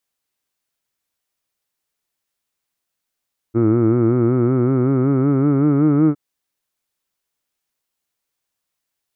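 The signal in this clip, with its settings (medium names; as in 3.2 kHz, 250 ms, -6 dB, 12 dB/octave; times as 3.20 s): formant vowel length 2.61 s, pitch 111 Hz, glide +5.5 st, F1 330 Hz, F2 1.3 kHz, F3 2.2 kHz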